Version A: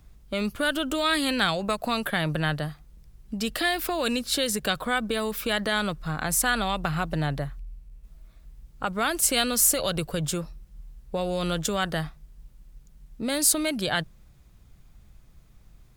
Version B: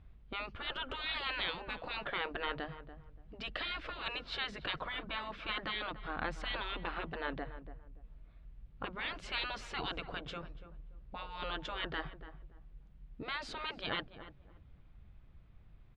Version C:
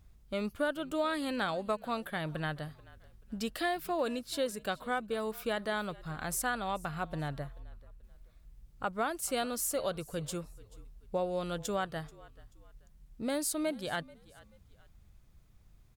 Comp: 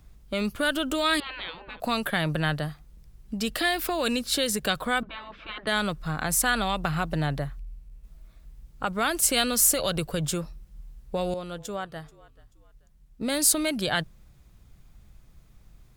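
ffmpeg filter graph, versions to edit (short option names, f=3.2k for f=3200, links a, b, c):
-filter_complex "[1:a]asplit=2[a][b];[0:a]asplit=4[c][d][e][f];[c]atrim=end=1.202[g];[a]atrim=start=1.198:end=1.802[h];[d]atrim=start=1.798:end=5.032[i];[b]atrim=start=5.028:end=5.672[j];[e]atrim=start=5.668:end=11.342[k];[2:a]atrim=start=11.338:end=13.212[l];[f]atrim=start=13.208[m];[g][h]acrossfade=d=0.004:c1=hsin:c2=hsin[n];[n][i]acrossfade=d=0.004:c1=hsin:c2=hsin[o];[o][j]acrossfade=d=0.004:c1=hsin:c2=hsin[p];[p][k]acrossfade=d=0.004:c1=hsin:c2=hsin[q];[q][l]acrossfade=d=0.004:c1=hsin:c2=hsin[r];[r][m]acrossfade=d=0.004:c1=hsin:c2=hsin"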